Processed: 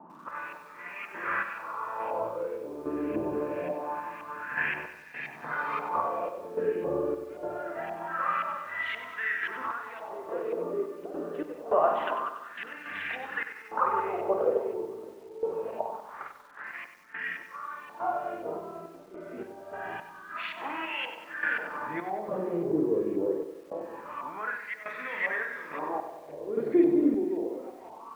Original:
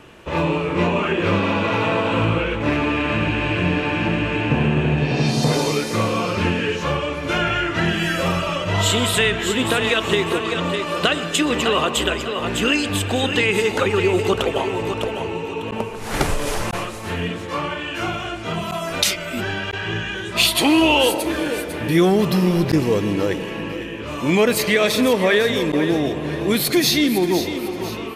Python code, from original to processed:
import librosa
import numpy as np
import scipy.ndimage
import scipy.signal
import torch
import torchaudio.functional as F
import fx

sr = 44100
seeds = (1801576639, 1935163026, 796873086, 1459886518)

y = fx.room_early_taps(x, sr, ms=(27, 52), db=(-15.5, -4.5))
y = fx.filter_lfo_lowpass(y, sr, shape='saw_up', hz=1.9, low_hz=790.0, high_hz=2400.0, q=2.0)
y = fx.hum_notches(y, sr, base_hz=60, count=9)
y = fx.wah_lfo(y, sr, hz=0.25, low_hz=370.0, high_hz=2000.0, q=3.9)
y = fx.dmg_noise_band(y, sr, seeds[0], low_hz=160.0, high_hz=350.0, level_db=-56.0)
y = fx.tremolo_random(y, sr, seeds[1], hz=3.5, depth_pct=90)
y = fx.echo_crushed(y, sr, ms=95, feedback_pct=55, bits=9, wet_db=-10)